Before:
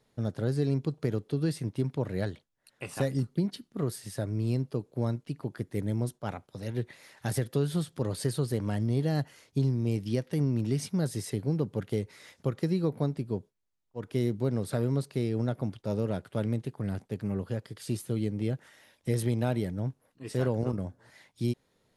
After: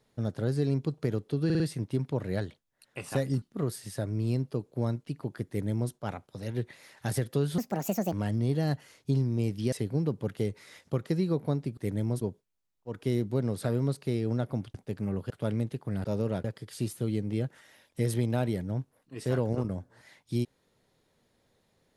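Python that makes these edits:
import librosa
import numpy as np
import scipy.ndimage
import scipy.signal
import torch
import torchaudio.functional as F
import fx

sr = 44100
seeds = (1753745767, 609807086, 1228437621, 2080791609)

y = fx.edit(x, sr, fx.stutter(start_s=1.45, slice_s=0.05, count=4),
    fx.cut(start_s=3.27, length_s=0.35),
    fx.duplicate(start_s=5.68, length_s=0.44, to_s=13.3),
    fx.speed_span(start_s=7.78, length_s=0.82, speed=1.51),
    fx.cut(start_s=10.2, length_s=1.05),
    fx.swap(start_s=15.83, length_s=0.4, other_s=16.97, other_length_s=0.56), tone=tone)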